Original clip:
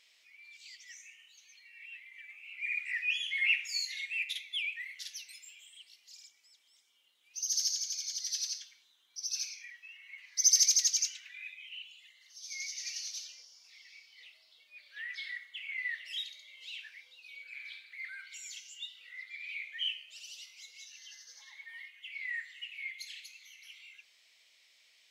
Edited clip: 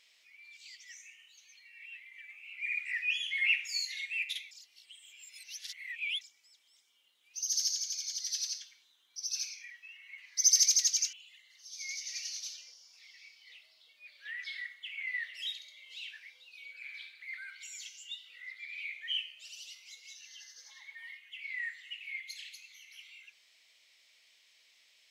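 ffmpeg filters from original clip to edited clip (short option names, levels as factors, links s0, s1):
-filter_complex "[0:a]asplit=4[s0][s1][s2][s3];[s0]atrim=end=4.512[s4];[s1]atrim=start=4.508:end=6.212,asetpts=PTS-STARTPTS,areverse[s5];[s2]atrim=start=6.208:end=11.132[s6];[s3]atrim=start=11.838[s7];[s4][s5]acrossfade=d=0.004:c1=hsin:c2=hsin[s8];[s8][s6]acrossfade=d=0.004:c1=hsin:c2=hsin[s9];[s9][s7]acrossfade=d=0.004:c1=hsin:c2=hsin"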